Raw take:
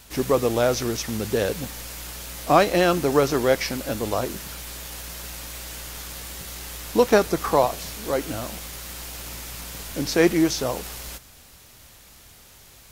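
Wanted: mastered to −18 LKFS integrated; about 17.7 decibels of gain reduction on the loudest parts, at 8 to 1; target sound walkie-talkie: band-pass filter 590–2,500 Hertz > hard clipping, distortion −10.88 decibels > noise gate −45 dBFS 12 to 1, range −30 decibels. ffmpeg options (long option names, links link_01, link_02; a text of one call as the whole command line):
ffmpeg -i in.wav -af "acompressor=threshold=-31dB:ratio=8,highpass=590,lowpass=2500,asoftclip=type=hard:threshold=-35.5dB,agate=range=-30dB:threshold=-45dB:ratio=12,volume=25.5dB" out.wav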